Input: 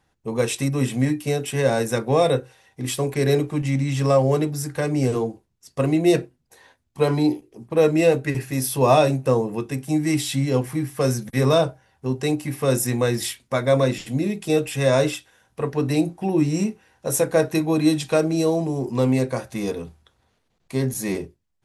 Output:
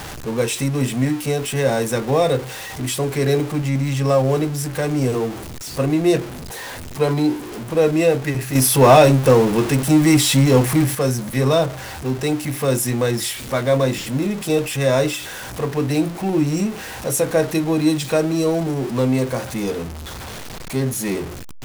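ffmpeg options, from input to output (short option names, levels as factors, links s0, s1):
-filter_complex "[0:a]aeval=exprs='val(0)+0.5*0.0473*sgn(val(0))':c=same,asettb=1/sr,asplit=3[s0][s1][s2];[s0]atrim=end=8.554[s3];[s1]atrim=start=8.55:end=10.95,asetpts=PTS-STARTPTS,afade=t=in:d=0.004:c=qsin,afade=t=out:st=2.396:d=0.004:c=qsin,acontrast=72[s4];[s2]atrim=start=10.946[s5];[s3][s4]acrossfade=d=0.004:c1=hsin:c2=qsin[s6];[s6][s5]acrossfade=d=0.004:c1=qsin:c2=hsin"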